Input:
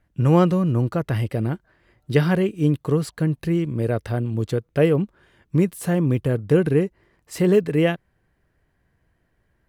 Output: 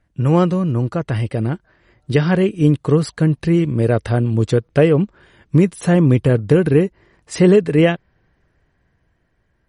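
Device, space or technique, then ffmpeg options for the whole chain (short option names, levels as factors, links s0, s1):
low-bitrate web radio: -af "dynaudnorm=f=350:g=9:m=5.96,alimiter=limit=0.562:level=0:latency=1:release=326,volume=1.26" -ar 48000 -c:a libmp3lame -b:a 40k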